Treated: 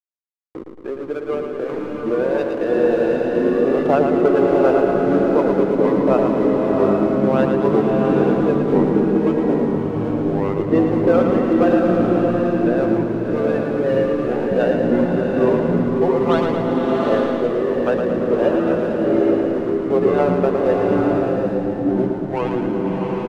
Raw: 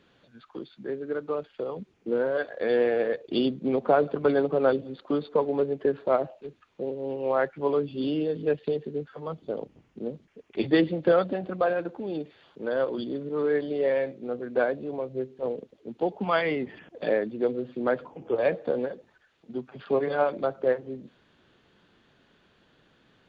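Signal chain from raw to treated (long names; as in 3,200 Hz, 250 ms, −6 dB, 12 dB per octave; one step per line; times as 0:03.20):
running median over 25 samples
gate on every frequency bin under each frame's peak −30 dB strong
parametric band 150 Hz −13.5 dB 1.3 octaves
in parallel at +2 dB: downward compressor, threshold −39 dBFS, peak gain reduction 19.5 dB
on the sum: slack as between gear wheels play −32 dBFS
delay with pitch and tempo change per echo 591 ms, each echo −5 semitones, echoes 3
on a send: repeating echo 112 ms, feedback 60%, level −6 dB
on the sum: slow-attack reverb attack 800 ms, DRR 0.5 dB
level +5 dB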